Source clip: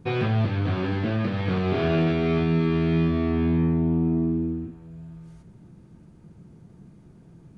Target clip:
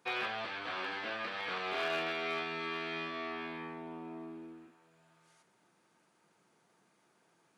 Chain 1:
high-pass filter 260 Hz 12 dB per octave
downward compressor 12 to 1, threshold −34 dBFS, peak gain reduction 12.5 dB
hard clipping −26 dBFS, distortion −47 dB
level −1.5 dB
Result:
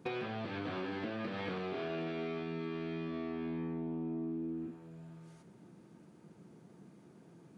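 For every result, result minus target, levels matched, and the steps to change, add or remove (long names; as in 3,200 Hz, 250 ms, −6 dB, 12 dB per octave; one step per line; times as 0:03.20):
downward compressor: peak gain reduction +12.5 dB; 250 Hz band +10.0 dB
remove: downward compressor 12 to 1, threshold −34 dBFS, peak gain reduction 12.5 dB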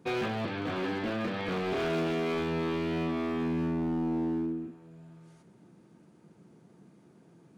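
250 Hz band +10.0 dB
change: high-pass filter 920 Hz 12 dB per octave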